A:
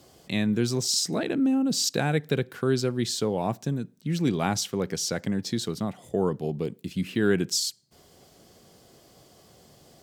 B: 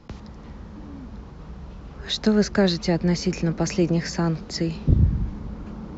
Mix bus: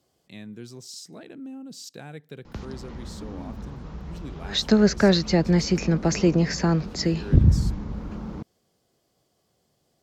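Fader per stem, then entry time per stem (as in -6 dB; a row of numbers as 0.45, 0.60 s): -15.5, +1.5 dB; 0.00, 2.45 s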